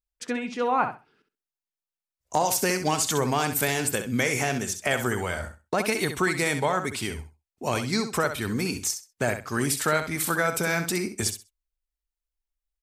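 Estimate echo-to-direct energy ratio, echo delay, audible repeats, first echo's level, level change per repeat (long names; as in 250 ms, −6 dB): −9.0 dB, 65 ms, 2, −9.0 dB, −14.5 dB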